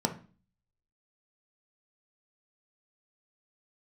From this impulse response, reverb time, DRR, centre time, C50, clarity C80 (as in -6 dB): 0.35 s, 3.5 dB, 10 ms, 12.0 dB, 18.5 dB